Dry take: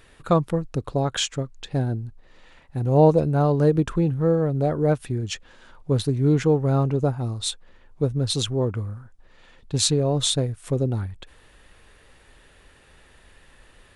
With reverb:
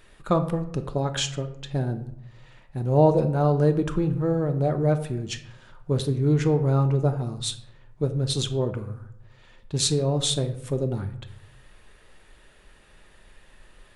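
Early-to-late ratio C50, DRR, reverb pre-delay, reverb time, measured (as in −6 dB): 12.5 dB, 7.5 dB, 3 ms, 0.75 s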